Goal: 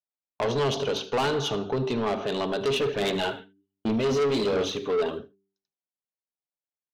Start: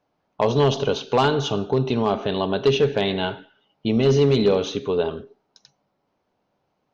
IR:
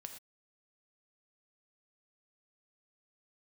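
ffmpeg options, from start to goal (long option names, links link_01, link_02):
-filter_complex "[0:a]agate=range=-36dB:threshold=-37dB:ratio=16:detection=peak,lowshelf=frequency=150:gain=-8,bandreject=frequency=97.71:width_type=h:width=4,bandreject=frequency=195.42:width_type=h:width=4,bandreject=frequency=293.13:width_type=h:width=4,bandreject=frequency=390.84:width_type=h:width=4,asplit=3[link_01][link_02][link_03];[link_01]afade=type=out:start_time=2.72:duration=0.02[link_04];[link_02]aphaser=in_gain=1:out_gain=1:delay=4.6:decay=0.48:speed=1.3:type=sinusoidal,afade=type=in:start_time=2.72:duration=0.02,afade=type=out:start_time=5.17:duration=0.02[link_05];[link_03]afade=type=in:start_time=5.17:duration=0.02[link_06];[link_04][link_05][link_06]amix=inputs=3:normalize=0,asoftclip=type=tanh:threshold=-21dB,aecho=1:1:77:0.1"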